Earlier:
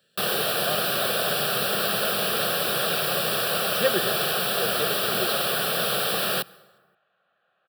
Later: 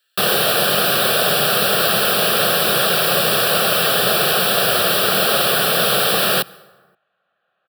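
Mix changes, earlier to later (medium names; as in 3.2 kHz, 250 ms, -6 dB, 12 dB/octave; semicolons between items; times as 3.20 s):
speech: add brick-wall FIR high-pass 1.2 kHz; first sound +8.5 dB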